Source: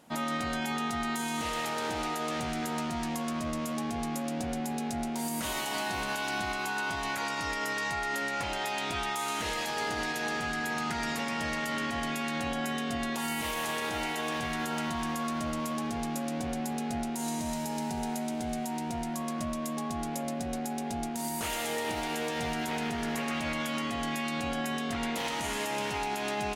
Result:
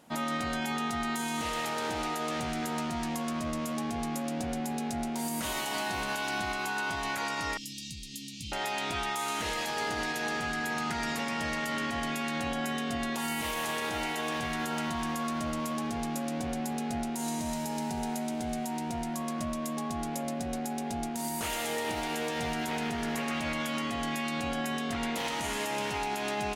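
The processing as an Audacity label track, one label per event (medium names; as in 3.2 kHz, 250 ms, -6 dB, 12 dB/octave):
7.570000	8.520000	inverse Chebyshev band-stop 500–1600 Hz, stop band 50 dB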